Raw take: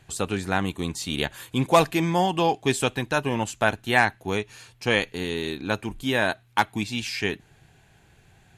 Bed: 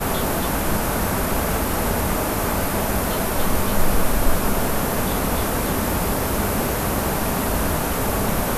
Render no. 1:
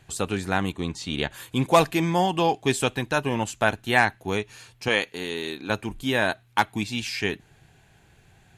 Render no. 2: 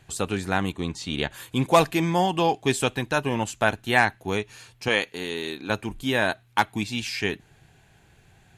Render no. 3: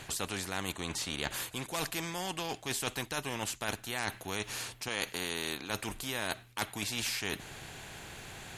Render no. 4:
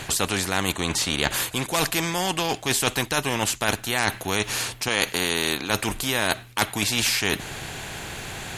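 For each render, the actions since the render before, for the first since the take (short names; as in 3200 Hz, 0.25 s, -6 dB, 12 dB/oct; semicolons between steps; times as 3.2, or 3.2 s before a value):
0.72–1.31 air absorption 67 m; 4.88–5.7 HPF 320 Hz 6 dB/oct
nothing audible
reverse; compressor, threshold -31 dBFS, peak gain reduction 18 dB; reverse; spectral compressor 2:1
gain +12 dB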